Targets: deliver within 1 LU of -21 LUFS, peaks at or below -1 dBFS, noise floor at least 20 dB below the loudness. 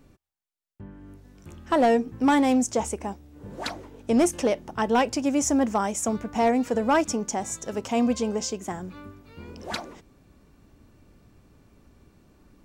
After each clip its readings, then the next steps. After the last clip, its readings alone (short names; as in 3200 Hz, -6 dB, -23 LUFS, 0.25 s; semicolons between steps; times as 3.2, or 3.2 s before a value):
clipped 0.4%; flat tops at -14.5 dBFS; loudness -25.0 LUFS; peak -14.5 dBFS; loudness target -21.0 LUFS
-> clip repair -14.5 dBFS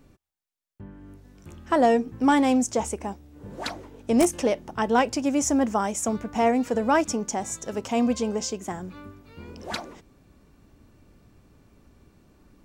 clipped 0.0%; loudness -24.5 LUFS; peak -5.5 dBFS; loudness target -21.0 LUFS
-> gain +3.5 dB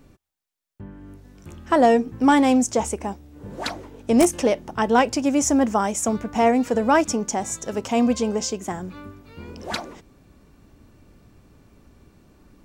loudness -21.0 LUFS; peak -2.0 dBFS; noise floor -59 dBFS